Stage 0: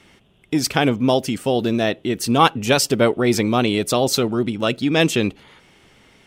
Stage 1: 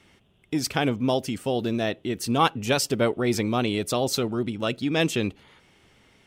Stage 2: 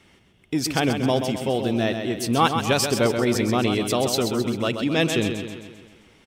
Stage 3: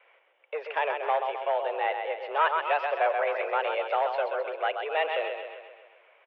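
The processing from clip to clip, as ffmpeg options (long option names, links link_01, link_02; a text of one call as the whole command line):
ffmpeg -i in.wav -af "equalizer=frequency=87:width_type=o:width=0.69:gain=4,volume=-6.5dB" out.wav
ffmpeg -i in.wav -af "acontrast=38,aecho=1:1:131|262|393|524|655|786|917:0.447|0.241|0.13|0.0703|0.038|0.0205|0.0111,volume=-3.5dB" out.wav
ffmpeg -i in.wav -af "asoftclip=type=hard:threshold=-16.5dB,highpass=frequency=390:width_type=q:width=0.5412,highpass=frequency=390:width_type=q:width=1.307,lowpass=frequency=2500:width_type=q:width=0.5176,lowpass=frequency=2500:width_type=q:width=0.7071,lowpass=frequency=2500:width_type=q:width=1.932,afreqshift=150,volume=-1dB" out.wav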